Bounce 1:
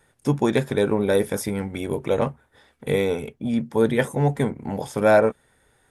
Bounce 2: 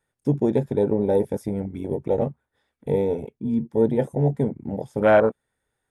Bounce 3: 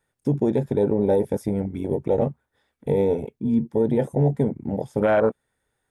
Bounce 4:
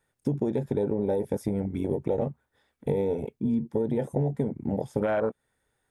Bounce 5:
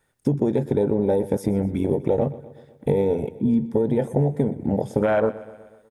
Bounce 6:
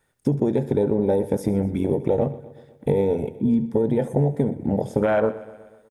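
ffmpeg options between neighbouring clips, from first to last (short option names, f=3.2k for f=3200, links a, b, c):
-af "afwtdn=0.0794"
-af "alimiter=limit=-13.5dB:level=0:latency=1:release=63,volume=2.5dB"
-af "acompressor=threshold=-23dB:ratio=6"
-af "aecho=1:1:123|246|369|492|615:0.126|0.0743|0.0438|0.0259|0.0153,volume=6dB"
-af "aecho=1:1:71:0.126"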